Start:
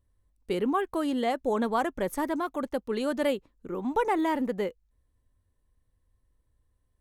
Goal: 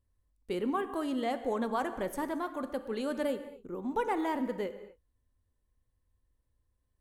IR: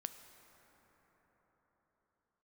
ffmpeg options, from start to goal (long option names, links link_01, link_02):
-filter_complex "[0:a]asettb=1/sr,asplit=3[link_01][link_02][link_03];[link_01]atrim=end=3.234[link_04];[link_02]atrim=start=3.23:end=3.91,asetpts=PTS-STARTPTS,afade=type=in:duration=0.004:curve=qsin,afade=type=out:start_time=0.676:duration=0.004:curve=qsin,equalizer=frequency=2300:width_type=o:width=1.9:gain=-6[link_05];[link_03]atrim=start=3.906[link_06];[link_04][link_05]acrossfade=duration=0.004:curve1=hsin:curve2=qsin[link_07];[link_07][link_06]acrossfade=duration=0.004:curve1=qsin:curve2=hsin[link_08];[1:a]atrim=start_sample=2205,afade=type=out:start_time=0.37:duration=0.01,atrim=end_sample=16758,asetrate=52920,aresample=44100[link_09];[link_08][link_09]afir=irnorm=-1:irlink=0"